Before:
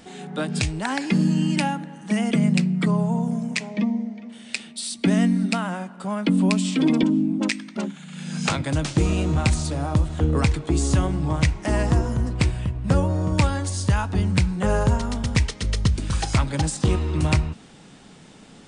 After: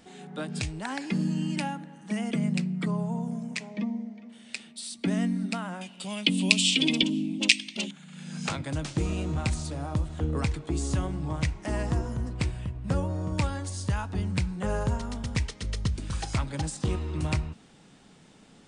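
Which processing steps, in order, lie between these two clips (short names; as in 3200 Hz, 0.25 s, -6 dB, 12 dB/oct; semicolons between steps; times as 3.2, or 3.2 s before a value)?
5.81–7.91 resonant high shelf 2000 Hz +12.5 dB, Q 3; gain -8 dB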